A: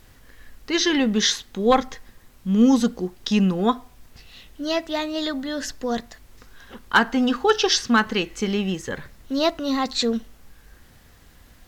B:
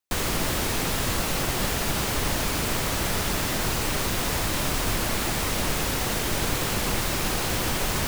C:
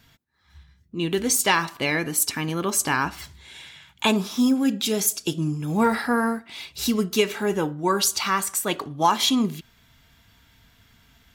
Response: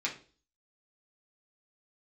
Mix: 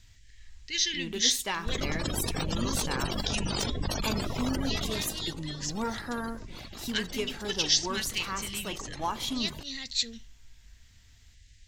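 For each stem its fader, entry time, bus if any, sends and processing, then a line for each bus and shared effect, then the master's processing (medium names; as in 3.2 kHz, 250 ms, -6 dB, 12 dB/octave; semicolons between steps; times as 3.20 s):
-4.0 dB, 0.00 s, no send, FFT filter 110 Hz 0 dB, 160 Hz -14 dB, 1.2 kHz -30 dB, 1.9 kHz -3 dB, 7.3 kHz +3 dB, 11 kHz -22 dB
4.80 s -0.5 dB -> 5.37 s -13 dB, 1.55 s, no send, AM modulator 49 Hz, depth 60%; spectral gate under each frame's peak -15 dB strong; resonant high shelf 3.1 kHz +10 dB, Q 1.5
-12.5 dB, 0.00 s, no send, none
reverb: none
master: none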